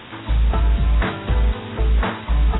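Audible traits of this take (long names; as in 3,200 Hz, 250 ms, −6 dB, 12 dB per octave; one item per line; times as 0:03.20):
a quantiser's noise floor 6 bits, dither triangular
AAC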